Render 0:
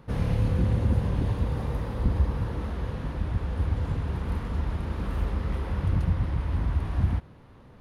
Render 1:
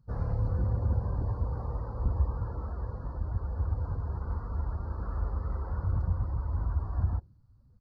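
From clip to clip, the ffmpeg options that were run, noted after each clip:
-af "afftdn=nr=24:nf=-41,firequalizer=gain_entry='entry(100,0);entry(150,-7);entry(260,-8);entry(400,-4);entry(710,0);entry(1400,3);entry(2200,-16);entry(3100,-19);entry(4400,13);entry(8000,0)':delay=0.05:min_phase=1,volume=-3.5dB"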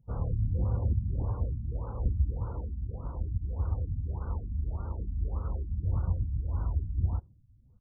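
-af "afftfilt=real='re*lt(b*sr/1024,270*pow(1600/270,0.5+0.5*sin(2*PI*1.7*pts/sr)))':imag='im*lt(b*sr/1024,270*pow(1600/270,0.5+0.5*sin(2*PI*1.7*pts/sr)))':win_size=1024:overlap=0.75"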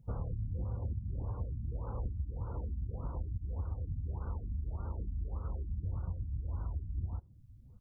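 -af "acompressor=threshold=-39dB:ratio=6,volume=4.5dB"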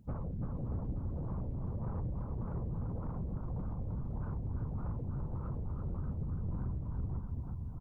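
-af "afftfilt=real='hypot(re,im)*cos(2*PI*random(0))':imag='hypot(re,im)*sin(2*PI*random(1))':win_size=512:overlap=0.75,aecho=1:1:340|629|874.6|1083|1261:0.631|0.398|0.251|0.158|0.1,asoftclip=type=tanh:threshold=-38.5dB,volume=7.5dB"

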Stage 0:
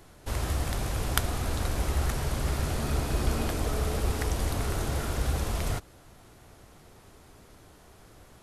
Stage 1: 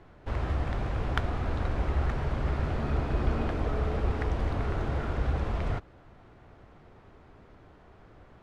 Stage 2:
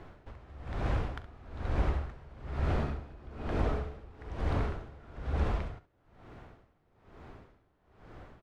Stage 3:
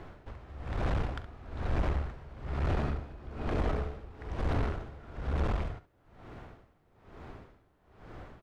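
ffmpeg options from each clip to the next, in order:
-af "lowpass=2.2k"
-filter_complex "[0:a]acompressor=threshold=-32dB:ratio=2,asplit=2[a][b];[b]aecho=0:1:42|68:0.188|0.266[c];[a][c]amix=inputs=2:normalize=0,aeval=exprs='val(0)*pow(10,-23*(0.5-0.5*cos(2*PI*1.1*n/s))/20)':c=same,volume=4.5dB"
-af "aeval=exprs='(tanh(28.2*val(0)+0.4)-tanh(0.4))/28.2':c=same,volume=4.5dB"

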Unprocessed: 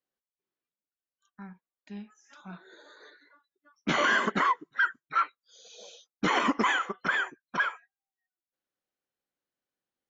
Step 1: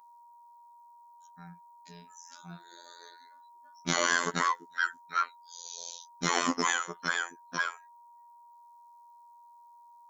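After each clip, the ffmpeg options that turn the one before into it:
-af "aeval=exprs='val(0)+0.00251*sin(2*PI*940*n/s)':c=same,aexciter=amount=3.5:drive=8.5:freq=4.1k,afftfilt=real='hypot(re,im)*cos(PI*b)':imag='0':win_size=2048:overlap=0.75"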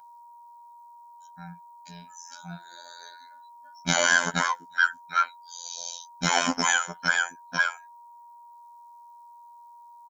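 -af "aecho=1:1:1.3:0.75,volume=3.5dB"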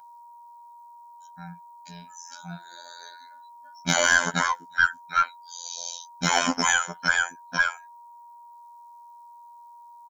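-af "aeval=exprs='0.75*(cos(1*acos(clip(val(0)/0.75,-1,1)))-cos(1*PI/2))+0.0299*(cos(4*acos(clip(val(0)/0.75,-1,1)))-cos(4*PI/2))':c=same,volume=1.5dB"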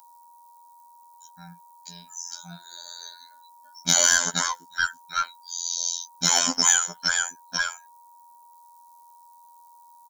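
-af "aexciter=amount=4.6:drive=4.4:freq=3.5k,volume=-4.5dB"

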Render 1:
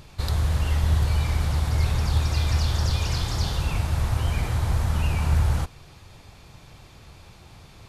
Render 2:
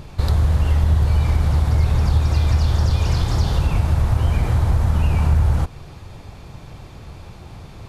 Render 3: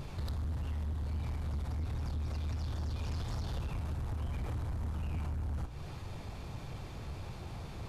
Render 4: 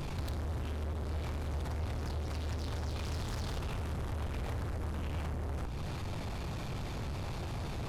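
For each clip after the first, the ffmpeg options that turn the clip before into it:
-af "acompressor=threshold=-25dB:ratio=2.5,tiltshelf=f=1.4k:g=4.5,volume=6dB"
-af "acompressor=threshold=-25dB:ratio=6,flanger=delay=7.4:depth=9.4:regen=78:speed=1.5:shape=sinusoidal,asoftclip=type=tanh:threshold=-32dB"
-af "aeval=exprs='0.0251*(cos(1*acos(clip(val(0)/0.0251,-1,1)))-cos(1*PI/2))+0.00891*(cos(5*acos(clip(val(0)/0.0251,-1,1)))-cos(5*PI/2))':c=same"

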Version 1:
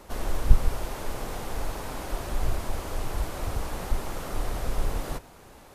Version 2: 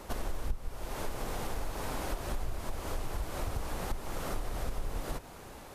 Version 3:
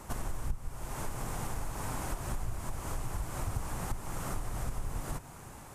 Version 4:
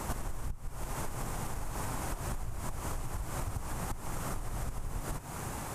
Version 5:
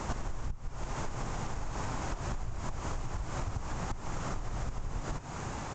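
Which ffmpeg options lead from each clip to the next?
-af "acompressor=threshold=-33dB:ratio=5,volume=2dB"
-af "equalizer=f=125:t=o:w=1:g=8,equalizer=f=500:t=o:w=1:g=-5,equalizer=f=1k:t=o:w=1:g=3,equalizer=f=4k:t=o:w=1:g=-6,equalizer=f=8k:t=o:w=1:g=7,volume=-1.5dB"
-af "acompressor=threshold=-42dB:ratio=12,volume=10dB"
-af "aresample=16000,aresample=44100,volume=1dB"

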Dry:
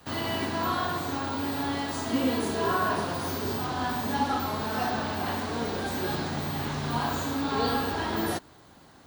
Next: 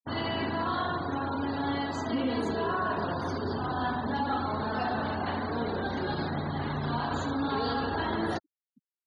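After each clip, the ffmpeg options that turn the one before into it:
-af "afftfilt=real='re*gte(hypot(re,im),0.0178)':imag='im*gte(hypot(re,im),0.0178)':win_size=1024:overlap=0.75,alimiter=limit=-20.5dB:level=0:latency=1:release=45,lowpass=f=7k:w=0.5412,lowpass=f=7k:w=1.3066"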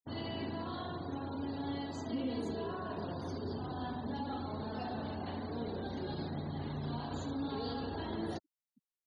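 -af "equalizer=f=1.4k:t=o:w=1.6:g=-10.5,volume=-6dB"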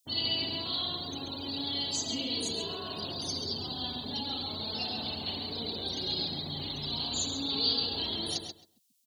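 -filter_complex "[0:a]aexciter=amount=12:drive=5.6:freq=2.6k,asplit=2[a][b];[b]adelay=134,lowpass=f=4.4k:p=1,volume=-5.5dB,asplit=2[c][d];[d]adelay=134,lowpass=f=4.4k:p=1,volume=0.18,asplit=2[e][f];[f]adelay=134,lowpass=f=4.4k:p=1,volume=0.18[g];[a][c][e][g]amix=inputs=4:normalize=0,volume=-2dB"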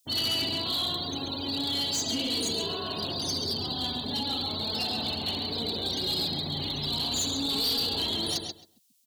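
-af "volume=29.5dB,asoftclip=hard,volume=-29.5dB,volume=5dB"

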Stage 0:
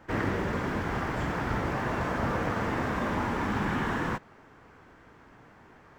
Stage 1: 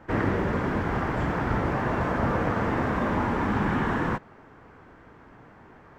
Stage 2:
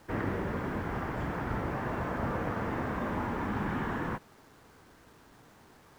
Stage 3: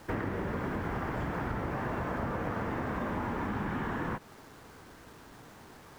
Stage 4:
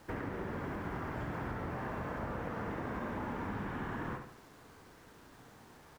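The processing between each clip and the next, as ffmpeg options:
-af "highshelf=f=2.9k:g=-10,volume=4.5dB"
-af "acrusher=bits=8:mix=0:aa=0.000001,volume=-7.5dB"
-af "acompressor=threshold=-36dB:ratio=6,volume=5.5dB"
-af "aecho=1:1:70|140|210|280|350:0.447|0.197|0.0865|0.0381|0.0167,volume=-6dB"

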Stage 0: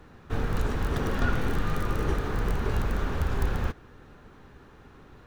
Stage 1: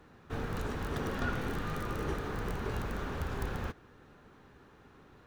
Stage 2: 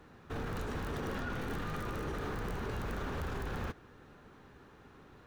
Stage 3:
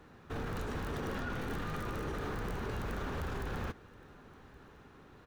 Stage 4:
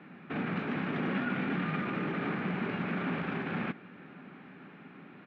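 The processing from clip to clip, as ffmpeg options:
-af "lowshelf=f=61:g=-10.5,volume=-5dB"
-af "alimiter=level_in=7dB:limit=-24dB:level=0:latency=1:release=14,volume=-7dB,volume=1dB"
-af "aecho=1:1:1120:0.0631"
-af "highpass=f=160:w=0.5412,highpass=f=160:w=1.3066,equalizer=f=180:t=q:w=4:g=9,equalizer=f=260:t=q:w=4:g=4,equalizer=f=470:t=q:w=4:g=-7,equalizer=f=990:t=q:w=4:g=-5,equalizer=f=2.3k:t=q:w=4:g=8,lowpass=f=3.1k:w=0.5412,lowpass=f=3.1k:w=1.3066,volume=5.5dB"

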